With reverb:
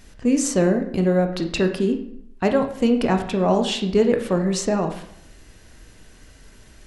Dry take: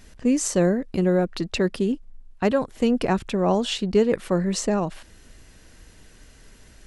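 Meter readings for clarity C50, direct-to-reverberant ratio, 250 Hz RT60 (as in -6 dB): 9.5 dB, 5.0 dB, 0.70 s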